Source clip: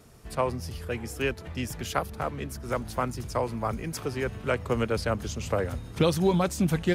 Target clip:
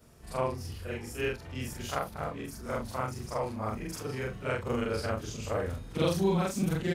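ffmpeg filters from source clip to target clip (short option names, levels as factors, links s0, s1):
-filter_complex "[0:a]afftfilt=real='re':imag='-im':win_size=4096:overlap=0.75,asplit=2[s0][s1];[s1]adelay=25,volume=0.251[s2];[s0][s2]amix=inputs=2:normalize=0"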